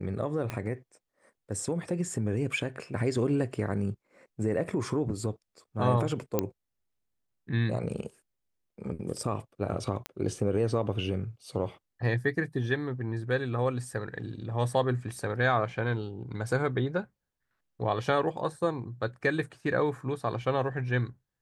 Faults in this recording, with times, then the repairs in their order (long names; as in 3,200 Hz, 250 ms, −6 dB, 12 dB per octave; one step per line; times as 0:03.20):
0:00.50: click −19 dBFS
0:06.39: click −12 dBFS
0:10.06: click −18 dBFS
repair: click removal